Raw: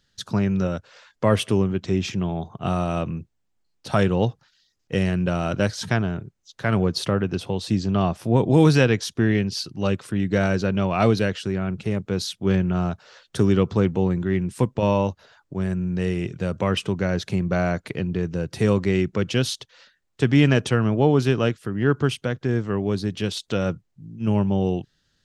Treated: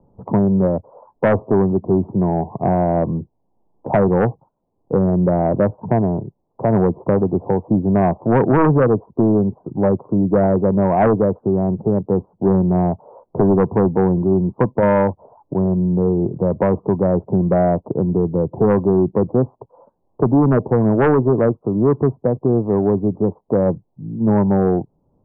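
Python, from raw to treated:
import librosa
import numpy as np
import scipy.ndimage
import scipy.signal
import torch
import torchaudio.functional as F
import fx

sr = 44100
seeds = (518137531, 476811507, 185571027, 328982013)

y = scipy.signal.sosfilt(scipy.signal.butter(12, 1000.0, 'lowpass', fs=sr, output='sos'), x)
y = fx.low_shelf(y, sr, hz=150.0, db=-11.0)
y = fx.fold_sine(y, sr, drive_db=8, ceiling_db=-7.0)
y = fx.band_squash(y, sr, depth_pct=40)
y = F.gain(torch.from_numpy(y), -1.0).numpy()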